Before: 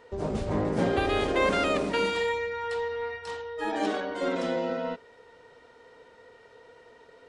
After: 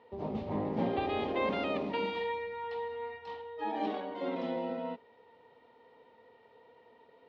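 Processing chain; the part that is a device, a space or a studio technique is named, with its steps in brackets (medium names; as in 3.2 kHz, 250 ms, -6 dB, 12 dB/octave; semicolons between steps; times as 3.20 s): guitar cabinet (cabinet simulation 90–3900 Hz, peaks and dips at 230 Hz +6 dB, 860 Hz +7 dB, 1.5 kHz -10 dB); trim -7.5 dB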